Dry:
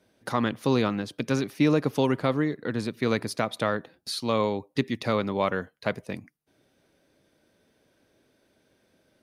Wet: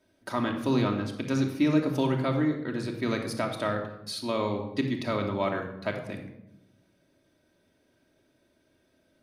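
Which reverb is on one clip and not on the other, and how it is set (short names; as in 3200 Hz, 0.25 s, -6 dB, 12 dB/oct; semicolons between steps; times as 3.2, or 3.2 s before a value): shoebox room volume 3000 m³, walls furnished, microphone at 2.8 m; gain -5 dB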